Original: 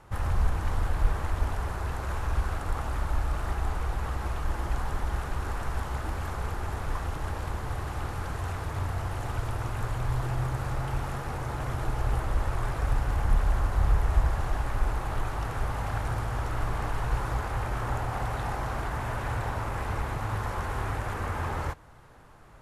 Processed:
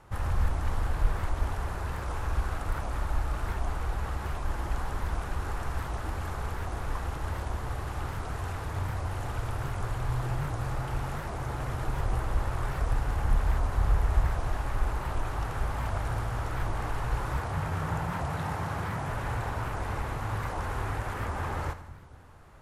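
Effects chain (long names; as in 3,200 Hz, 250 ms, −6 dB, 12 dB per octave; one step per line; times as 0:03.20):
0:17.44–0:19.09: frequency shifter +42 Hz
echo with a time of its own for lows and highs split 320 Hz, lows 225 ms, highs 82 ms, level −13 dB
wow of a warped record 78 rpm, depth 250 cents
level −1.5 dB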